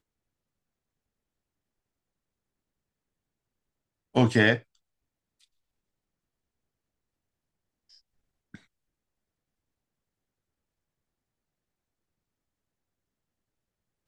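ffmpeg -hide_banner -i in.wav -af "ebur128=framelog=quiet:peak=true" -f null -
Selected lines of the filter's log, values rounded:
Integrated loudness:
  I:         -23.8 LUFS
  Threshold: -38.2 LUFS
Loudness range:
  LRA:         4.7 LU
  Threshold: -53.2 LUFS
  LRA low:   -34.3 LUFS
  LRA high:  -29.6 LUFS
True peak:
  Peak:       -6.8 dBFS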